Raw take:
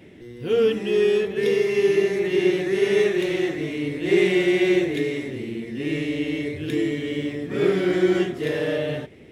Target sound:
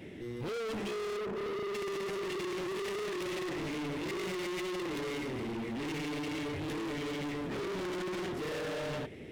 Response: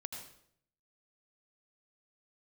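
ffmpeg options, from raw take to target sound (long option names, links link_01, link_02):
-filter_complex "[0:a]asplit=3[link_01][link_02][link_03];[link_01]afade=type=out:start_time=1.16:duration=0.02[link_04];[link_02]lowpass=1100,afade=type=in:start_time=1.16:duration=0.02,afade=type=out:start_time=1.73:duration=0.02[link_05];[link_03]afade=type=in:start_time=1.73:duration=0.02[link_06];[link_04][link_05][link_06]amix=inputs=3:normalize=0,alimiter=limit=-19dB:level=0:latency=1:release=10,asoftclip=type=hard:threshold=-35.5dB"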